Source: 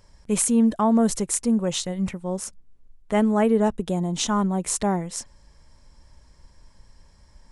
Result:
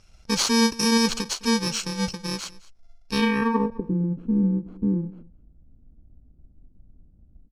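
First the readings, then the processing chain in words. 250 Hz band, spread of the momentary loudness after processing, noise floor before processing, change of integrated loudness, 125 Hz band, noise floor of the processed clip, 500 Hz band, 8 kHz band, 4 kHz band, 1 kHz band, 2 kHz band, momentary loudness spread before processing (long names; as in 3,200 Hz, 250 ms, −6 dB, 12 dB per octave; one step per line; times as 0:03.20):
−1.5 dB, 10 LU, −55 dBFS, −1.0 dB, +0.5 dB, −55 dBFS, −5.0 dB, −3.0 dB, +7.5 dB, −2.0 dB, +7.0 dB, 11 LU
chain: samples in bit-reversed order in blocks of 64 samples
low-pass filter sweep 5,700 Hz → 280 Hz, 0:03.06–0:03.91
on a send: single-tap delay 209 ms −21 dB
on the sum: every ending faded ahead of time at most 280 dB per second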